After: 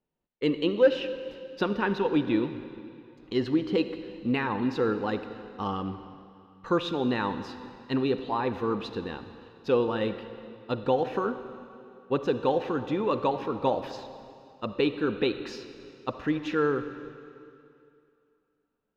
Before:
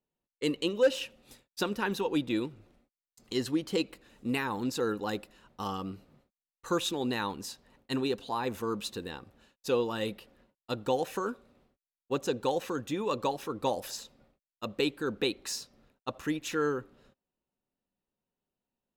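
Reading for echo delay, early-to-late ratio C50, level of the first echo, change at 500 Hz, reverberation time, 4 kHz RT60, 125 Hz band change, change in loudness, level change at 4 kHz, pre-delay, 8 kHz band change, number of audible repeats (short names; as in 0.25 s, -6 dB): none, 10.0 dB, none, +4.5 dB, 2.6 s, 2.4 s, +5.0 dB, +4.0 dB, -1.5 dB, 39 ms, under -15 dB, none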